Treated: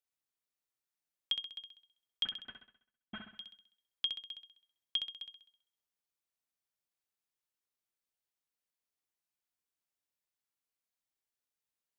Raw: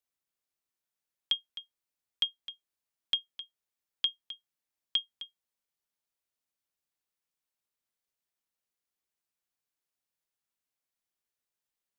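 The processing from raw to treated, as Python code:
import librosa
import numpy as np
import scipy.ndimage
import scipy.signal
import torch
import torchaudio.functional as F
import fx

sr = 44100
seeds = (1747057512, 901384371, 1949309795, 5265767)

p1 = fx.cvsd(x, sr, bps=16000, at=(2.25, 3.33))
p2 = p1 + fx.room_flutter(p1, sr, wall_m=11.2, rt60_s=0.63, dry=0)
y = p2 * 10.0 ** (-5.0 / 20.0)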